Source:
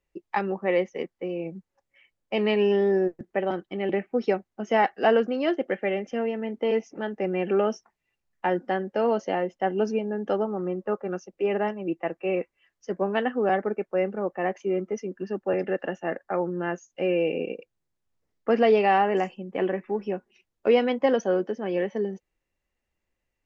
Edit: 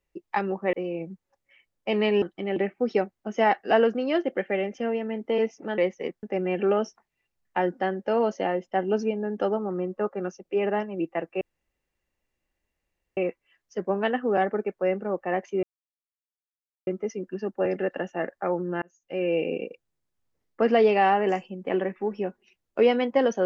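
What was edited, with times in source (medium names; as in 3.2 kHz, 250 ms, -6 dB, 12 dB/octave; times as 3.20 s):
0.73–1.18 s: move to 7.11 s
2.67–3.55 s: delete
12.29 s: insert room tone 1.76 s
14.75 s: insert silence 1.24 s
16.70–17.25 s: fade in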